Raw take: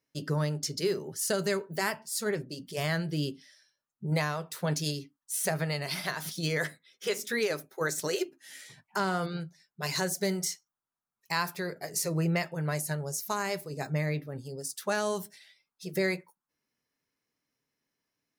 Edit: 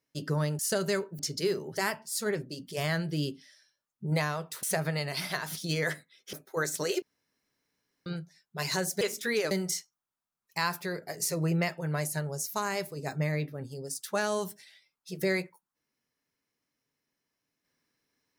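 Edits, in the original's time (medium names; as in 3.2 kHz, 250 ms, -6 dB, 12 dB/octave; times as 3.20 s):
0.59–1.17 s: move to 1.77 s
4.63–5.37 s: delete
7.07–7.57 s: move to 10.25 s
8.26–9.30 s: room tone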